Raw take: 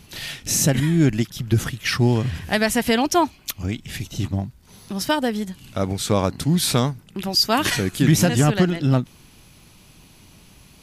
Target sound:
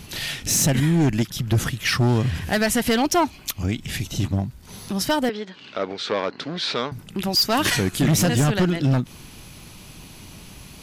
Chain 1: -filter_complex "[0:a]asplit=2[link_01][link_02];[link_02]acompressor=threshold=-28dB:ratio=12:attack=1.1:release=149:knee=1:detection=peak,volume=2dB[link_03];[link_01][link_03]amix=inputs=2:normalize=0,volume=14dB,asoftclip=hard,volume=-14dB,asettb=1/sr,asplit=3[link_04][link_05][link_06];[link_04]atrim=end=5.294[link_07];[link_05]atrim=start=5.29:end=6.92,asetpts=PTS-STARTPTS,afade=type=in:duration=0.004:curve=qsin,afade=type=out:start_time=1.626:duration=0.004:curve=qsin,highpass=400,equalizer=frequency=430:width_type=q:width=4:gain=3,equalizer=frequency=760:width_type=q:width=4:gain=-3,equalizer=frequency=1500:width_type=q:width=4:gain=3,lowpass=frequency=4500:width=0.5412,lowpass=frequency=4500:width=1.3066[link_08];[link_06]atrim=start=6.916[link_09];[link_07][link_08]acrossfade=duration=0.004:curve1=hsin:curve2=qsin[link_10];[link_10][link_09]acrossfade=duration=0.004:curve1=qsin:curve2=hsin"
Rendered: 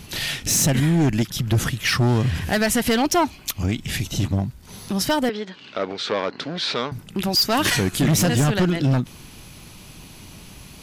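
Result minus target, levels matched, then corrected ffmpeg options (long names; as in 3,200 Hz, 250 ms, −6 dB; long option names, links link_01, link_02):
downward compressor: peak gain reduction −6.5 dB
-filter_complex "[0:a]asplit=2[link_01][link_02];[link_02]acompressor=threshold=-35dB:ratio=12:attack=1.1:release=149:knee=1:detection=peak,volume=2dB[link_03];[link_01][link_03]amix=inputs=2:normalize=0,volume=14dB,asoftclip=hard,volume=-14dB,asettb=1/sr,asplit=3[link_04][link_05][link_06];[link_04]atrim=end=5.294[link_07];[link_05]atrim=start=5.29:end=6.92,asetpts=PTS-STARTPTS,afade=type=in:duration=0.004:curve=qsin,afade=type=out:start_time=1.626:duration=0.004:curve=qsin,highpass=400,equalizer=frequency=430:width_type=q:width=4:gain=3,equalizer=frequency=760:width_type=q:width=4:gain=-3,equalizer=frequency=1500:width_type=q:width=4:gain=3,lowpass=frequency=4500:width=0.5412,lowpass=frequency=4500:width=1.3066[link_08];[link_06]atrim=start=6.916[link_09];[link_07][link_08]acrossfade=duration=0.004:curve1=hsin:curve2=qsin[link_10];[link_10][link_09]acrossfade=duration=0.004:curve1=qsin:curve2=hsin"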